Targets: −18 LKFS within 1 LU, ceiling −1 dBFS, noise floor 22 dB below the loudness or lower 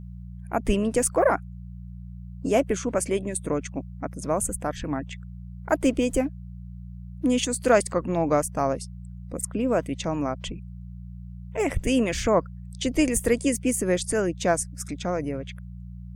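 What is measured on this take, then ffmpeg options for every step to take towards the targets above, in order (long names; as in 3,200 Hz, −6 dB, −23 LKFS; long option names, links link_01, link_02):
mains hum 60 Hz; hum harmonics up to 180 Hz; level of the hum −37 dBFS; integrated loudness −25.5 LKFS; sample peak −5.0 dBFS; target loudness −18.0 LKFS
→ -af "bandreject=frequency=60:width_type=h:width=4,bandreject=frequency=120:width_type=h:width=4,bandreject=frequency=180:width_type=h:width=4"
-af "volume=7.5dB,alimiter=limit=-1dB:level=0:latency=1"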